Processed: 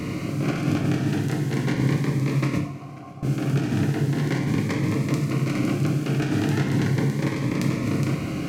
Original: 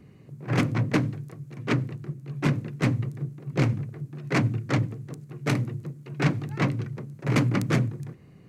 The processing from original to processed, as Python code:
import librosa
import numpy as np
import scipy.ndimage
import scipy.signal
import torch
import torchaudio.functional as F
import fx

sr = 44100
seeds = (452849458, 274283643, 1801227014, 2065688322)

y = fx.bin_compress(x, sr, power=0.4)
y = fx.over_compress(y, sr, threshold_db=-21.0, ratio=-0.5)
y = fx.formant_cascade(y, sr, vowel='a', at=(2.58, 3.23))
y = fx.echo_feedback(y, sr, ms=541, feedback_pct=59, wet_db=-21)
y = fx.rev_double_slope(y, sr, seeds[0], early_s=0.49, late_s=2.3, knee_db=-16, drr_db=1.0)
y = fx.notch_cascade(y, sr, direction='rising', hz=0.38)
y = F.gain(torch.from_numpy(y), -1.0).numpy()